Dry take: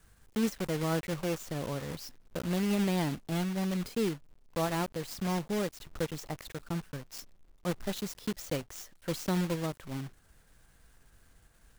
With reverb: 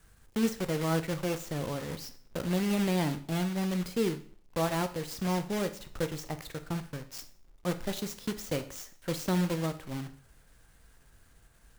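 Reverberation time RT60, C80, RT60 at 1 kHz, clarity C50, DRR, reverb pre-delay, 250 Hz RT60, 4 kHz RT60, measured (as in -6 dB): 0.50 s, 18.0 dB, 0.55 s, 14.0 dB, 9.0 dB, 6 ms, 0.50 s, 0.45 s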